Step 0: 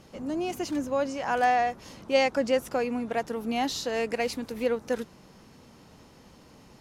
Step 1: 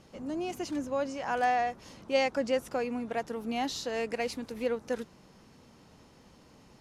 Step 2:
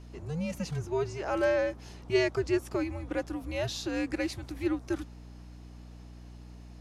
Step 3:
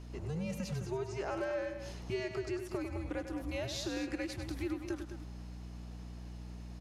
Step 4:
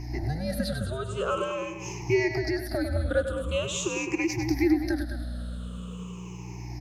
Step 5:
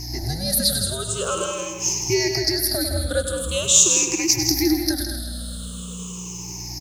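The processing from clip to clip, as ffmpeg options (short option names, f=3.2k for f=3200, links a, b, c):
-af "lowpass=12k,volume=-4dB"
-af "lowshelf=f=260:t=q:w=1.5:g=-7,afreqshift=-160,aeval=exprs='val(0)+0.00501*(sin(2*PI*60*n/s)+sin(2*PI*2*60*n/s)/2+sin(2*PI*3*60*n/s)/3+sin(2*PI*4*60*n/s)/4+sin(2*PI*5*60*n/s)/5)':c=same"
-filter_complex "[0:a]acompressor=threshold=-35dB:ratio=6,asplit=2[a][b];[b]aecho=0:1:99|211:0.355|0.316[c];[a][c]amix=inputs=2:normalize=0"
-af "afftfilt=real='re*pow(10,23/40*sin(2*PI*(0.74*log(max(b,1)*sr/1024/100)/log(2)-(-0.44)*(pts-256)/sr)))':imag='im*pow(10,23/40*sin(2*PI*(0.74*log(max(b,1)*sr/1024/100)/log(2)-(-0.44)*(pts-256)/sr)))':win_size=1024:overlap=0.75,volume=6dB"
-af "aexciter=amount=6.5:drive=6.6:freq=3.5k,aecho=1:1:162:0.355,volume=2dB"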